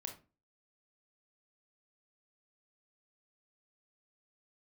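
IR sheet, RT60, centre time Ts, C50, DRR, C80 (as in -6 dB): 0.30 s, 17 ms, 9.0 dB, 3.5 dB, 16.0 dB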